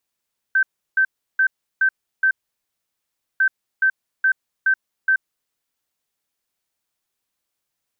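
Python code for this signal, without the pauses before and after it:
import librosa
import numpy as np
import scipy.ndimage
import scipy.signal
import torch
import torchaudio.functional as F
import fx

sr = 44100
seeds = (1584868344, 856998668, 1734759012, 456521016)

y = fx.beep_pattern(sr, wave='sine', hz=1550.0, on_s=0.08, off_s=0.34, beeps=5, pause_s=1.09, groups=2, level_db=-13.0)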